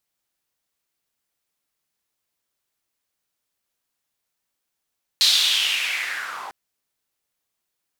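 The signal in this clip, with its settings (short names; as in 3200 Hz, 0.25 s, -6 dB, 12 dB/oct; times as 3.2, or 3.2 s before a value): swept filtered noise white, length 1.30 s bandpass, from 4100 Hz, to 820 Hz, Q 4.6, linear, gain ramp -13 dB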